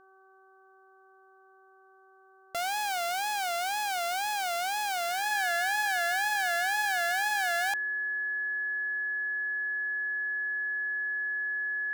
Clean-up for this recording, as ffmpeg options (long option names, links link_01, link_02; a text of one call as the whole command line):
ffmpeg -i in.wav -af "bandreject=frequency=382.5:width_type=h:width=4,bandreject=frequency=765:width_type=h:width=4,bandreject=frequency=1147.5:width_type=h:width=4,bandreject=frequency=1530:width_type=h:width=4,bandreject=frequency=1700:width=30" out.wav